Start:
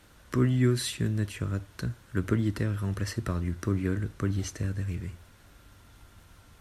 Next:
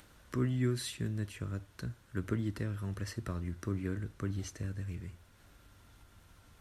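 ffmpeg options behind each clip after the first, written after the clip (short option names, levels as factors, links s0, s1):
-af "acompressor=mode=upward:threshold=0.00501:ratio=2.5,volume=0.422"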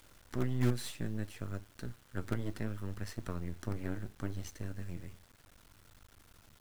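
-af "aeval=exprs='if(lt(val(0),0),0.251*val(0),val(0))':c=same,flanger=delay=0.9:depth=8.1:regen=69:speed=0.67:shape=triangular,acrusher=bits=8:dc=4:mix=0:aa=0.000001,volume=1.78"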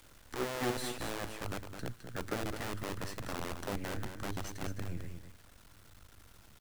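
-filter_complex "[0:a]acrossover=split=220|1100[s0][s1][s2];[s0]aeval=exprs='(mod(42.2*val(0)+1,2)-1)/42.2':c=same[s3];[s3][s1][s2]amix=inputs=3:normalize=0,aecho=1:1:211:0.398,volume=1.19"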